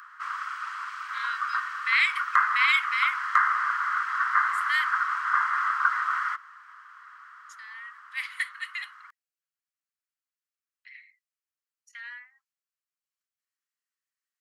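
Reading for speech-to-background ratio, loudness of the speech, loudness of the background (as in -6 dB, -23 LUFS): -1.0 dB, -27.5 LUFS, -26.5 LUFS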